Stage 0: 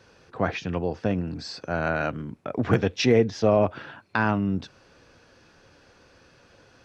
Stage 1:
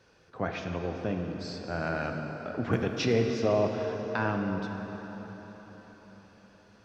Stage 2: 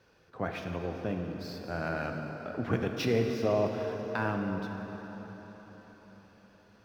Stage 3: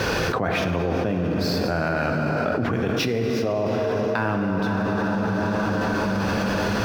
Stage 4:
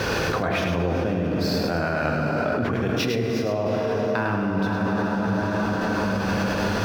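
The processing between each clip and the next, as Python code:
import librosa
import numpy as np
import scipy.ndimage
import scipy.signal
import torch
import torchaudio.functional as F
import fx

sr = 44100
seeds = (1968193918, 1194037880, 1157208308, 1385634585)

y1 = fx.rev_plate(x, sr, seeds[0], rt60_s=4.7, hf_ratio=0.75, predelay_ms=0, drr_db=3.0)
y1 = y1 * librosa.db_to_amplitude(-7.0)
y2 = scipy.ndimage.median_filter(y1, 5, mode='constant')
y2 = y2 * librosa.db_to_amplitude(-2.0)
y3 = fx.env_flatten(y2, sr, amount_pct=100)
y3 = y3 * librosa.db_to_amplitude(1.5)
y4 = y3 + 10.0 ** (-6.0 / 20.0) * np.pad(y3, (int(104 * sr / 1000.0), 0))[:len(y3)]
y4 = y4 * librosa.db_to_amplitude(-1.5)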